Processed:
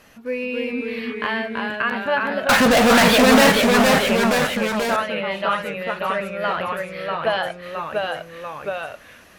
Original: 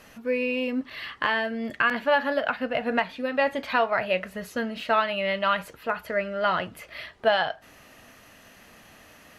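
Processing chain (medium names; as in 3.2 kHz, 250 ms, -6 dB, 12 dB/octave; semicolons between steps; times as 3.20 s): 2.49–3.52 s: fuzz box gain 46 dB, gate -49 dBFS; ever faster or slower copies 260 ms, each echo -1 st, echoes 3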